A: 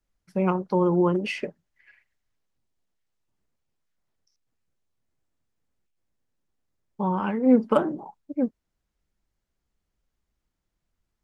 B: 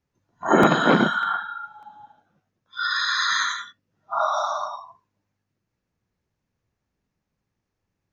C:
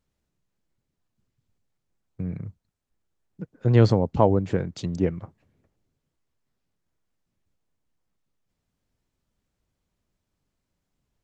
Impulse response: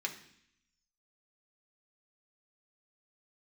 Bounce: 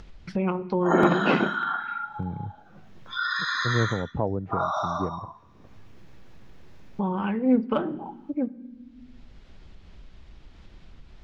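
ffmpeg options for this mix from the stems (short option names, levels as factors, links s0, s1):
-filter_complex "[0:a]lowpass=f=3700:t=q:w=1.6,lowshelf=f=150:g=10.5,volume=0.422,asplit=2[s0][s1];[s1]volume=0.422[s2];[1:a]highshelf=f=3300:g=-9.5,adelay=400,volume=0.501,asplit=2[s3][s4];[s4]volume=0.335[s5];[2:a]lowpass=1200,volume=0.376[s6];[3:a]atrim=start_sample=2205[s7];[s2][s5]amix=inputs=2:normalize=0[s8];[s8][s7]afir=irnorm=-1:irlink=0[s9];[s0][s3][s6][s9]amix=inputs=4:normalize=0,acompressor=mode=upward:threshold=0.0794:ratio=2.5"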